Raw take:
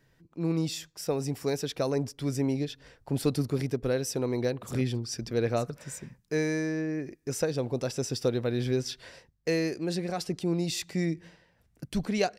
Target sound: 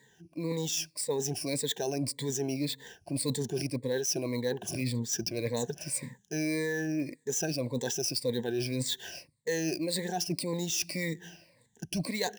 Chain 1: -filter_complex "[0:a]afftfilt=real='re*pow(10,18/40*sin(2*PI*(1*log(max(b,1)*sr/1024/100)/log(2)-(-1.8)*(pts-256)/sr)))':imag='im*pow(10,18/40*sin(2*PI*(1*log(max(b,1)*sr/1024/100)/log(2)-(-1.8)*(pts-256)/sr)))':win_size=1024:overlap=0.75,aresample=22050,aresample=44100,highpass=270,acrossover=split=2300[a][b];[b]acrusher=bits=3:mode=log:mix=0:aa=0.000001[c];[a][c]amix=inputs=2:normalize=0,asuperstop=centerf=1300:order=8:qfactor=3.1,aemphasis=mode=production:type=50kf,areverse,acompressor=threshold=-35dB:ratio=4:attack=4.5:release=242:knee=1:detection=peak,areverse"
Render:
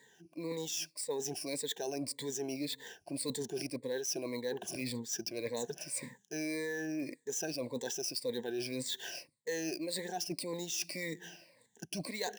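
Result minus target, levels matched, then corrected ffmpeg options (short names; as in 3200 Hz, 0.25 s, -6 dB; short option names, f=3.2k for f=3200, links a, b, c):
125 Hz band -7.0 dB; compressor: peak gain reduction +5 dB
-filter_complex "[0:a]afftfilt=real='re*pow(10,18/40*sin(2*PI*(1*log(max(b,1)*sr/1024/100)/log(2)-(-1.8)*(pts-256)/sr)))':imag='im*pow(10,18/40*sin(2*PI*(1*log(max(b,1)*sr/1024/100)/log(2)-(-1.8)*(pts-256)/sr)))':win_size=1024:overlap=0.75,aresample=22050,aresample=44100,highpass=120,acrossover=split=2300[a][b];[b]acrusher=bits=3:mode=log:mix=0:aa=0.000001[c];[a][c]amix=inputs=2:normalize=0,asuperstop=centerf=1300:order=8:qfactor=3.1,aemphasis=mode=production:type=50kf,areverse,acompressor=threshold=-27.5dB:ratio=4:attack=4.5:release=242:knee=1:detection=peak,areverse"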